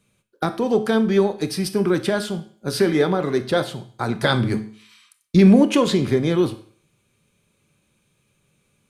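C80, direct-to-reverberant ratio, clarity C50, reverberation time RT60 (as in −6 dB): 17.5 dB, 10.0 dB, 14.0 dB, 0.50 s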